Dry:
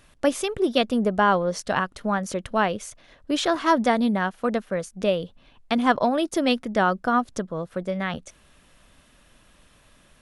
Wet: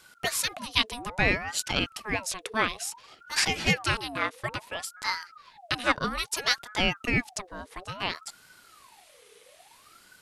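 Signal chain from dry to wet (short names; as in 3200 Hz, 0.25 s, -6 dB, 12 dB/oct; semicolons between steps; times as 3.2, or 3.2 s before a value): passive tone stack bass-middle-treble 10-0-10; ring modulator with a swept carrier 970 Hz, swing 55%, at 0.59 Hz; gain +8.5 dB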